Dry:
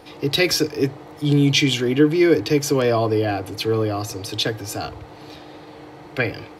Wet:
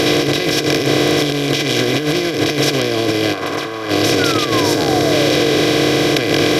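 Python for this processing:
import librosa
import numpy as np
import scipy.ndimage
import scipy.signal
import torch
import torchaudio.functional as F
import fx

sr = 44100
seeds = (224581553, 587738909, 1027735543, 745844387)

y = fx.bin_compress(x, sr, power=0.2)
y = fx.peak_eq(y, sr, hz=1100.0, db=14.5, octaves=1.4, at=(3.33, 3.89), fade=0.02)
y = fx.spec_paint(y, sr, seeds[0], shape='fall', start_s=4.19, length_s=1.42, low_hz=400.0, high_hz=1500.0, level_db=-20.0)
y = fx.notch(y, sr, hz=890.0, q=5.1)
y = fx.over_compress(y, sr, threshold_db=-12.0, ratio=-0.5)
y = fx.peak_eq(y, sr, hz=2700.0, db=-6.5, octaves=0.8, at=(4.63, 5.12))
y = y * librosa.db_to_amplitude(-3.0)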